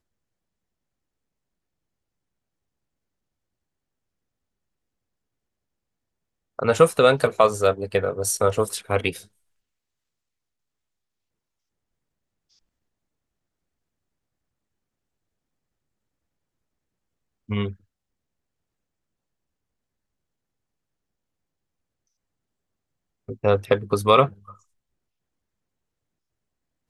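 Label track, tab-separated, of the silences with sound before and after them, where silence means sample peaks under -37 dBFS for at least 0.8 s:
9.220000	17.490000	silence
17.730000	23.290000	silence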